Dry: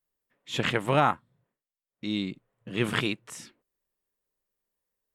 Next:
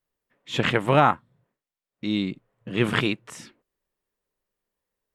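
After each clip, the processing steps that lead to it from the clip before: treble shelf 5.1 kHz -8 dB; trim +5 dB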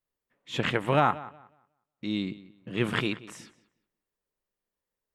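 filtered feedback delay 182 ms, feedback 24%, low-pass 4.6 kHz, level -18 dB; trim -5 dB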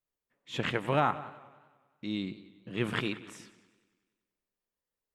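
modulated delay 95 ms, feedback 65%, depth 122 cents, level -19.5 dB; trim -4 dB

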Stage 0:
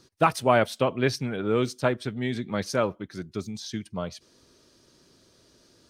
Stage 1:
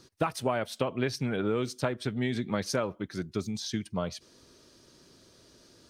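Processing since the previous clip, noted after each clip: compression 12:1, threshold -26 dBFS, peak gain reduction 12.5 dB; trim +1.5 dB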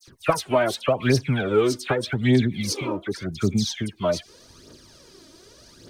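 spectral replace 2.50–2.82 s, 240–2000 Hz both; phase dispersion lows, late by 76 ms, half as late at 2.1 kHz; phaser 0.85 Hz, delay 3.4 ms, feedback 60%; trim +6.5 dB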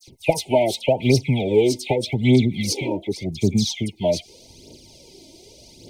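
brick-wall FIR band-stop 950–2000 Hz; trim +3 dB

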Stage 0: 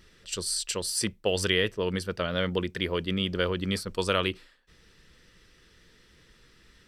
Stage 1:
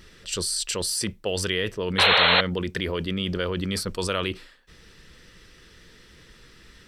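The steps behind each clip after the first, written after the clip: in parallel at +2 dB: compressor with a negative ratio -34 dBFS, ratio -1; on the sum: painted sound noise, 1.98–2.41 s, 420–4300 Hz -15 dBFS; trim -3 dB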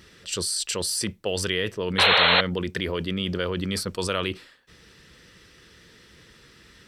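high-pass 65 Hz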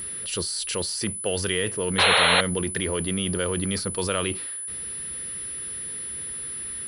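companding laws mixed up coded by mu; distance through air 73 m; whistle 10 kHz -31 dBFS

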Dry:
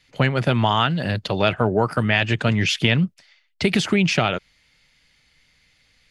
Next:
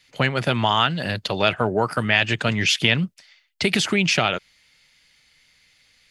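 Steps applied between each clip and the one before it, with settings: tilt EQ +1.5 dB/octave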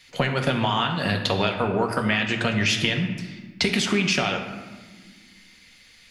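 compression, threshold -26 dBFS, peak gain reduction 13 dB; reverberation RT60 1.5 s, pre-delay 4 ms, DRR 2.5 dB; trim +5 dB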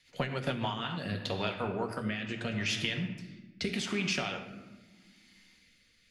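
rotary cabinet horn 8 Hz, later 0.8 Hz, at 0.26 s; trim -9 dB

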